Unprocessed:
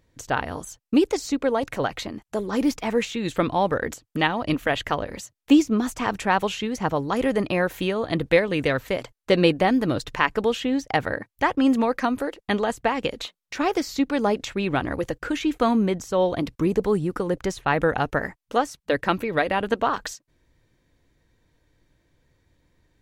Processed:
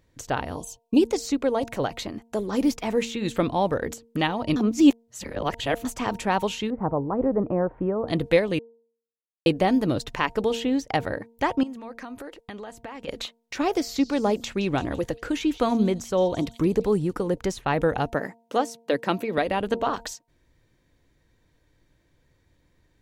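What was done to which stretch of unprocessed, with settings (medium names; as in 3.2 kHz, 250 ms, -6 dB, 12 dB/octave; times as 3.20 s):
0.56–0.99 s: time-frequency box 1.1–2.4 kHz -19 dB
4.56–5.85 s: reverse
6.70–8.08 s: inverse Chebyshev low-pass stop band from 5.3 kHz, stop band 70 dB
8.59–9.46 s: mute
11.63–13.08 s: compression, threshold -35 dBFS
13.71–17.13 s: repeats whose band climbs or falls 169 ms, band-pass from 4.2 kHz, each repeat 0.7 oct, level -10.5 dB
18.14–19.38 s: high-pass 150 Hz 24 dB/octave
whole clip: dynamic bell 1.6 kHz, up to -6 dB, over -37 dBFS, Q 0.97; de-hum 230.8 Hz, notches 4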